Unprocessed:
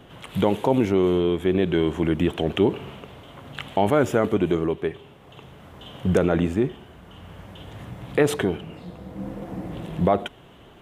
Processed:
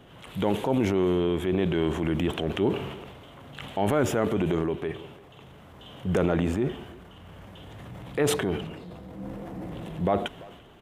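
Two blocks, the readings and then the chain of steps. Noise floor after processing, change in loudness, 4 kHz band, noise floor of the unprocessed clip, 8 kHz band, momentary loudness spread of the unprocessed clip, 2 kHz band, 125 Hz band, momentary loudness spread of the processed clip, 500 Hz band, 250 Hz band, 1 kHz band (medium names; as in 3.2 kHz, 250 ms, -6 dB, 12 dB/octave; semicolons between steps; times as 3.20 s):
-49 dBFS, -4.0 dB, -2.0 dB, -49 dBFS, +2.0 dB, 19 LU, -3.5 dB, -3.0 dB, 21 LU, -4.5 dB, -4.0 dB, -4.0 dB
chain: speakerphone echo 340 ms, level -23 dB; transient shaper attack -4 dB, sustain +7 dB; trim -4 dB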